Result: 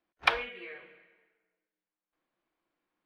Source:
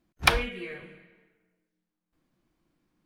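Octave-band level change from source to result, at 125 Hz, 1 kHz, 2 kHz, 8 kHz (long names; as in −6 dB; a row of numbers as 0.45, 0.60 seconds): −21.5 dB, −3.5 dB, −3.5 dB, below −15 dB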